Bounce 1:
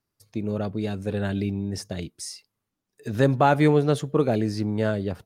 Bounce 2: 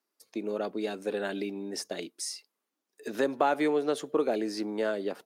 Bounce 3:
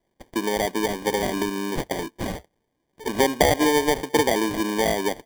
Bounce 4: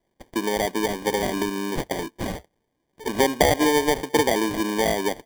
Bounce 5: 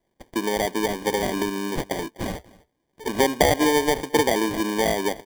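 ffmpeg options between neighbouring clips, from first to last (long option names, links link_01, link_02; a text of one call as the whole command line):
ffmpeg -i in.wav -af "acompressor=threshold=-22dB:ratio=3,highpass=frequency=280:width=0.5412,highpass=frequency=280:width=1.3066" out.wav
ffmpeg -i in.wav -filter_complex "[0:a]asplit=2[link_01][link_02];[link_02]acompressor=threshold=-37dB:ratio=6,volume=-1dB[link_03];[link_01][link_03]amix=inputs=2:normalize=0,acrusher=samples=33:mix=1:aa=0.000001,volume=5.5dB" out.wav
ffmpeg -i in.wav -af anull out.wav
ffmpeg -i in.wav -af "aecho=1:1:250:0.0708" out.wav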